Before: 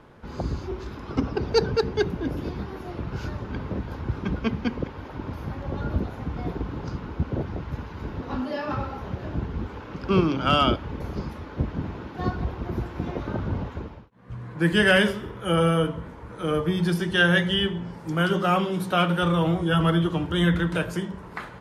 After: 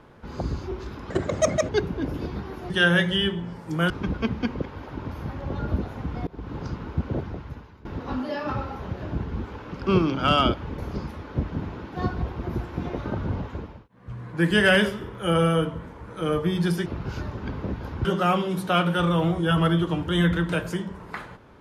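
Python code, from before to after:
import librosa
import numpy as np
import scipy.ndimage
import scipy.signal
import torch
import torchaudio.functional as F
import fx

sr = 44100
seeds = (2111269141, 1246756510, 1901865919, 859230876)

y = fx.edit(x, sr, fx.speed_span(start_s=1.1, length_s=0.82, speed=1.39),
    fx.swap(start_s=2.93, length_s=1.19, other_s=17.08, other_length_s=1.2),
    fx.fade_in_from(start_s=6.49, length_s=0.3, floor_db=-23.5),
    fx.fade_out_to(start_s=7.38, length_s=0.69, floor_db=-20.5), tone=tone)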